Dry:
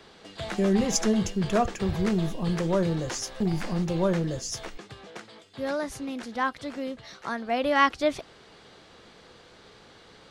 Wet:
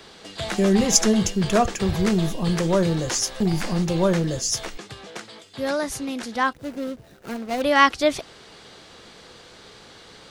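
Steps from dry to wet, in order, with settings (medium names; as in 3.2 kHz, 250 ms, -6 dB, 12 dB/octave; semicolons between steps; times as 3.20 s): 6.53–7.62 s: median filter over 41 samples; treble shelf 4 kHz +7.5 dB; trim +4.5 dB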